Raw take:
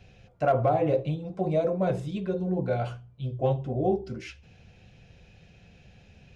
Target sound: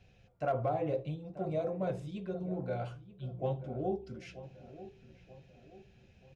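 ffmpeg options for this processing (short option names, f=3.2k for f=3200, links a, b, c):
-filter_complex "[0:a]asplit=2[a][b];[b]adelay=934,lowpass=f=1.8k:p=1,volume=-14.5dB,asplit=2[c][d];[d]adelay=934,lowpass=f=1.8k:p=1,volume=0.45,asplit=2[e][f];[f]adelay=934,lowpass=f=1.8k:p=1,volume=0.45,asplit=2[g][h];[h]adelay=934,lowpass=f=1.8k:p=1,volume=0.45[i];[a][c][e][g][i]amix=inputs=5:normalize=0,volume=-9dB"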